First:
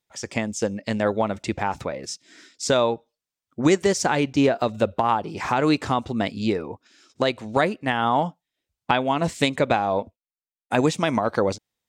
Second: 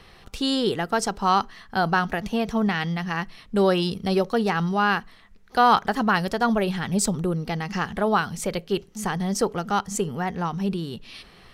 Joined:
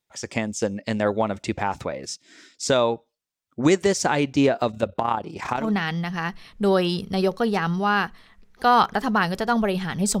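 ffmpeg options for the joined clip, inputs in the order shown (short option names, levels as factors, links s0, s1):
-filter_complex "[0:a]asettb=1/sr,asplit=3[s0][s1][s2];[s0]atrim=end=4.714[s3];[s1]atrim=start=4.71:end=5.72,asetpts=PTS-STARTPTS,afade=t=in:d=0.004:c=qsin,afade=t=out:st=1.006:d=0.004:c=qsin,tremolo=f=32:d=0.621[s4];[s2]atrim=start=5.716[s5];[s3][s4]acrossfade=d=0.004:c1=hsin:c2=qsin[s6];[s6][s5]acrossfade=d=0.004:c1=qsin:c2=hsin,apad=whole_dur=10.2,atrim=end=10.2,atrim=end=5.72,asetpts=PTS-STARTPTS[s7];[1:a]atrim=start=2.45:end=7.13,asetpts=PTS-STARTPTS[s8];[s7][s8]acrossfade=d=0.2:c1=tri:c2=tri"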